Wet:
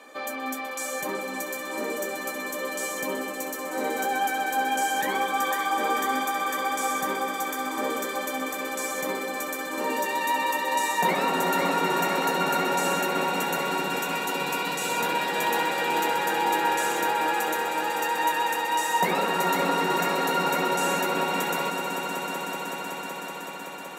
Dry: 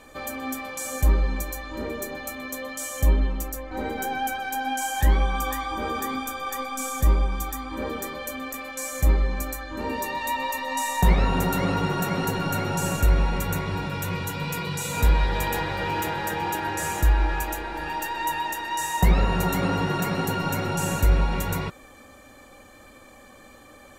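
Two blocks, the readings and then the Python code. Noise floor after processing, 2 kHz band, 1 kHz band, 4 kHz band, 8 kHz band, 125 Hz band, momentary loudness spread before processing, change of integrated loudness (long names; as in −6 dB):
−35 dBFS, +4.0 dB, +4.0 dB, +3.5 dB, +0.5 dB, −16.5 dB, 10 LU, 0.0 dB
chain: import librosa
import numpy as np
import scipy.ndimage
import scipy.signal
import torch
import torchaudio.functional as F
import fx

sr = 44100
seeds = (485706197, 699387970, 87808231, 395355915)

y = scipy.signal.sosfilt(scipy.signal.bessel(6, 340.0, 'highpass', norm='mag', fs=sr, output='sos'), x)
y = fx.high_shelf(y, sr, hz=5500.0, db=-5.5)
y = fx.echo_swell(y, sr, ms=188, loudest=5, wet_db=-12)
y = y * 10.0 ** (2.5 / 20.0)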